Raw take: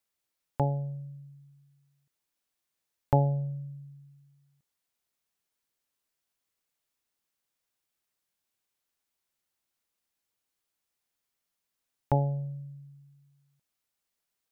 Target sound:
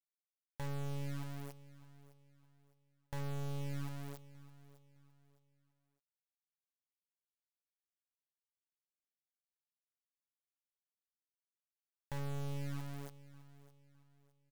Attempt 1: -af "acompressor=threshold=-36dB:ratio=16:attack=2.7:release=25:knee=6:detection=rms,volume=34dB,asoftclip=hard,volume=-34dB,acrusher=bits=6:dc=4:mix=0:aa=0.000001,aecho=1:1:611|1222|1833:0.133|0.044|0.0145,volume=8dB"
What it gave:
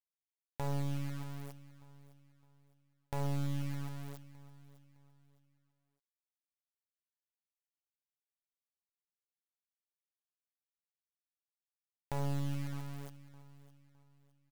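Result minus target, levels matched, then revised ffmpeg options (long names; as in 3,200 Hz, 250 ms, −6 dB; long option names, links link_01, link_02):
gain into a clipping stage and back: distortion −14 dB
-af "acompressor=threshold=-36dB:ratio=16:attack=2.7:release=25:knee=6:detection=rms,volume=42.5dB,asoftclip=hard,volume=-42.5dB,acrusher=bits=6:dc=4:mix=0:aa=0.000001,aecho=1:1:611|1222|1833:0.133|0.044|0.0145,volume=8dB"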